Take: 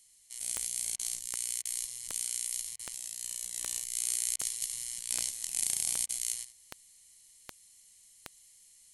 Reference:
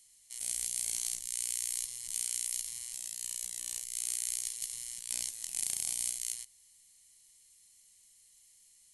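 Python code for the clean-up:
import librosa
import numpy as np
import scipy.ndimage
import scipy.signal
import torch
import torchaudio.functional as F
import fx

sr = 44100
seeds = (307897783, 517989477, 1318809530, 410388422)

y = fx.fix_declick_ar(x, sr, threshold=10.0)
y = fx.fix_interpolate(y, sr, at_s=(0.96, 1.62, 2.76, 4.36, 6.06), length_ms=31.0)
y = fx.fix_echo_inverse(y, sr, delay_ms=74, level_db=-14.0)
y = fx.gain(y, sr, db=fx.steps((0.0, 0.0), (3.54, -3.0)))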